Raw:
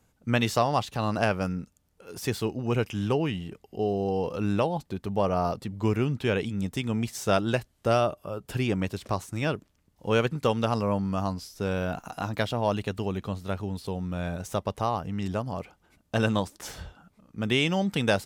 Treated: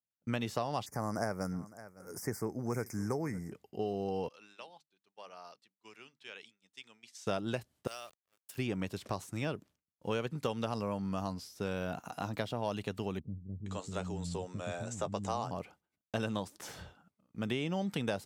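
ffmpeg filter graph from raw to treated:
-filter_complex "[0:a]asettb=1/sr,asplit=3[a][b][c];[a]atrim=end=0.864[d];[b]atrim=start=0.86:end=3.52,asetpts=PTS-STARTPTS,afade=t=in:d=0.004:c=qsin,afade=t=out:st=2.656:d=0.004:c=qsin,asuperstop=centerf=3300:order=12:qfactor=1.2,highshelf=f=5.3k:g=11,aecho=1:1:559:0.0841,atrim=end_sample=117306[e];[c]atrim=start=3.516[f];[d][e]acrossfade=d=0.004:c1=hsin:c2=qsin[g];[g][f]acrossfade=d=0.004:c1=qsin:c2=hsin,asettb=1/sr,asplit=3[h][i][j];[h]atrim=end=4.284[k];[i]atrim=start=4.28:end=7.27,asetpts=PTS-STARTPTS,afade=t=in:d=0.004:c=qsin,afade=t=out:st=2.986:d=0.004:c=qsin,highpass=110,lowpass=4.6k,aderivative,bandreject=f=50:t=h:w=6,bandreject=f=100:t=h:w=6,bandreject=f=150:t=h:w=6,bandreject=f=200:t=h:w=6,bandreject=f=250:t=h:w=6,bandreject=f=300:t=h:w=6[l];[j]atrim=start=7.266[m];[k][l]acrossfade=d=0.004:c1=hsin:c2=qsin[n];[n][m]acrossfade=d=0.004:c1=qsin:c2=hsin,asettb=1/sr,asplit=3[o][p][q];[o]atrim=end=7.874[r];[p]atrim=start=7.87:end=8.58,asetpts=PTS-STARTPTS,afade=t=in:d=0.004:c=qsin,afade=t=out:st=0.706:d=0.004:c=qsin,aderivative,aeval=exprs='val(0)*gte(abs(val(0)),0.00376)':c=same[s];[q]atrim=start=8.576[t];[r][s]acrossfade=d=0.004:c1=hsin:c2=qsin[u];[u][t]acrossfade=d=0.004:c1=qsin:c2=hsin,asettb=1/sr,asplit=3[v][w][x];[v]atrim=end=13.194[y];[w]atrim=start=13.19:end=15.51,asetpts=PTS-STARTPTS,afade=t=in:d=0.004:c=qsin,afade=t=out:st=2.316:d=0.004:c=qsin,lowpass=f=7.5k:t=q:w=7.1,asplit=2[z][aa];[aa]adelay=13,volume=-11dB[ab];[z][ab]amix=inputs=2:normalize=0,atrim=end_sample=102312,acrossover=split=260[ac][ad];[ad]adelay=470[ae];[ac][ae]amix=inputs=2:normalize=0,atrim=end_sample=102312[af];[x]atrim=start=15.506[ag];[y][af]acrossfade=d=0.004:c1=hsin:c2=qsin[ah];[ah][ag]acrossfade=d=0.004:c1=qsin:c2=hsin,highpass=99,agate=range=-33dB:threshold=-48dB:ratio=3:detection=peak,acrossover=split=1100|2600[ai][aj][ak];[ai]acompressor=threshold=-27dB:ratio=4[al];[aj]acompressor=threshold=-42dB:ratio=4[am];[ak]acompressor=threshold=-41dB:ratio=4[an];[al][am][an]amix=inputs=3:normalize=0,volume=-4.5dB"

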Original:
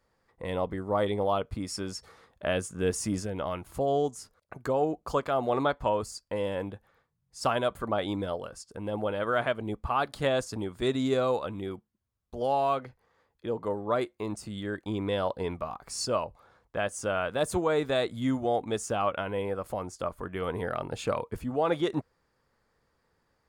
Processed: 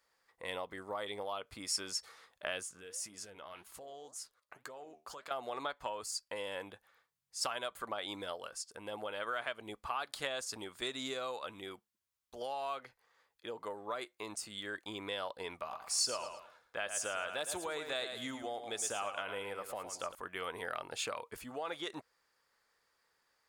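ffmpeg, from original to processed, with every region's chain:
-filter_complex "[0:a]asettb=1/sr,asplit=3[a][b][c];[a]atrim=end=2.634[d];[b]atrim=start=2.63:end=5.31,asetpts=PTS-STARTPTS,afade=t=in:d=0.004:c=qsin,afade=t=out:st=2.676:d=0.004:c=qsin,flanger=delay=4.4:depth=8.7:regen=72:speed=1.9:shape=sinusoidal,acompressor=threshold=-39dB:ratio=5:attack=3.2:release=140:knee=1:detection=peak[e];[c]atrim=start=5.306[f];[d][e]acrossfade=d=0.004:c1=hsin:c2=qsin[g];[g][f]acrossfade=d=0.004:c1=qsin:c2=hsin,asettb=1/sr,asplit=3[h][i][j];[h]atrim=end=15.574[k];[i]atrim=start=15.57:end=20.15,asetpts=PTS-STARTPTS,afade=t=in:d=0.004:c=qsin,afade=t=out:st=4.576:d=0.004:c=qsin,bandreject=f=1.1k:w=21,aecho=1:1:110|220|330:0.335|0.1|0.0301,atrim=end_sample=201978[l];[j]atrim=start=20.146[m];[k][l]acrossfade=d=0.004:c1=hsin:c2=qsin[n];[n][m]acrossfade=d=0.004:c1=qsin:c2=hsin,bass=f=250:g=-9,treble=f=4k:g=0,acompressor=threshold=-30dB:ratio=6,tiltshelf=f=970:g=-7.5,volume=-4dB"

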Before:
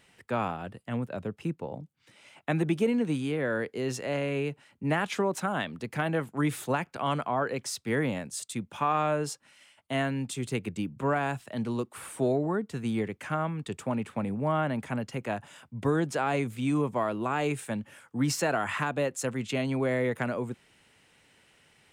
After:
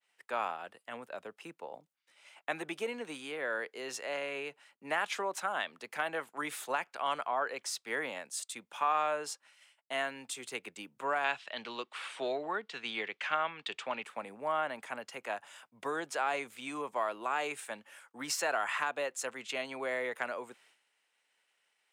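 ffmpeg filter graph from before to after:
-filter_complex "[0:a]asettb=1/sr,asplit=3[a][b][c];[a]atrim=end=11.244[d];[b]atrim=start=11.24:end=14.03,asetpts=PTS-STARTPTS,afade=t=in:d=0.004:c=qsin,afade=t=out:st=2.786:d=0.004:c=qsin,lowpass=4.8k,equalizer=f=3.3k:t=o:w=1.8:g=11[e];[c]atrim=start=14.026[f];[d][e]acrossfade=d=0.004:c1=hsin:c2=qsin[g];[g][f]acrossfade=d=0.004:c1=qsin:c2=hsin,agate=range=-33dB:threshold=-53dB:ratio=3:detection=peak,highpass=670,adynamicequalizer=threshold=0.00282:dfrequency=7300:dqfactor=0.7:tfrequency=7300:tqfactor=0.7:attack=5:release=100:ratio=0.375:range=2:mode=cutabove:tftype=highshelf,volume=-1.5dB"

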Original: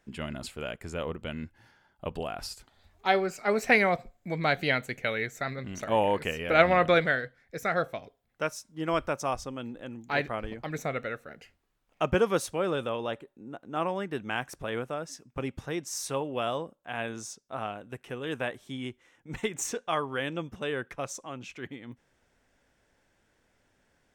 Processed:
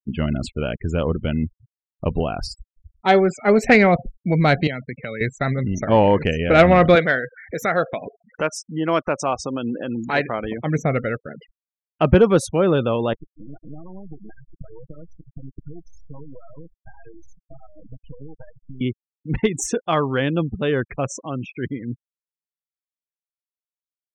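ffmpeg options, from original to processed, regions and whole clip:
-filter_complex "[0:a]asettb=1/sr,asplit=3[a][b][c];[a]atrim=end=4.674[d];[b]atrim=start=4.67:end=5.21,asetpts=PTS-STARTPTS,afade=t=in:d=0.004:c=qsin,afade=t=out:st=0.536:d=0.004:c=qsin,highpass=f=110:w=0.5412,highpass=f=110:w=1.3066,highshelf=f=7.8k:g=-3,acompressor=threshold=-43dB:ratio=2:attack=3.2:release=140:knee=1:detection=peak[e];[c]atrim=start=5.206[f];[d][e]acrossfade=d=0.004:c1=hsin:c2=qsin[g];[g][f]acrossfade=d=0.004:c1=qsin:c2=hsin,asettb=1/sr,asplit=3[h][i][j];[h]atrim=end=6.954[k];[i]atrim=start=6.95:end=10.63,asetpts=PTS-STARTPTS,afade=t=in:d=0.004:c=qsin,afade=t=out:st=3.676:d=0.004:c=qsin,highpass=f=420:p=1,acompressor=mode=upward:threshold=-30dB:ratio=2.5:attack=3.2:release=140:knee=2.83:detection=peak[l];[j]atrim=start=10.626[m];[k][l]acrossfade=d=0.004:c1=hsin:c2=qsin[n];[n][m]acrossfade=d=0.004:c1=qsin:c2=hsin,asettb=1/sr,asplit=3[o][p][q];[o]atrim=end=13.134[r];[p]atrim=start=13.13:end=18.81,asetpts=PTS-STARTPTS,afade=t=in:d=0.004:c=qsin,afade=t=out:st=5.676:d=0.004:c=qsin,aecho=1:1:6.3:0.7,atrim=end_sample=250488,acompressor=threshold=-44dB:ratio=8:attack=3.2:release=140:knee=1:detection=peak,aeval=exprs='max(val(0),0)':c=same[s];[q]atrim=start=18.806[t];[r][s]acrossfade=d=0.004:c1=hsin:c2=qsin[u];[u][t]acrossfade=d=0.004:c1=qsin:c2=hsin,afftfilt=real='re*gte(hypot(re,im),0.01)':imag='im*gte(hypot(re,im),0.01)':win_size=1024:overlap=0.75,lowshelf=f=380:g=11.5,acontrast=71"

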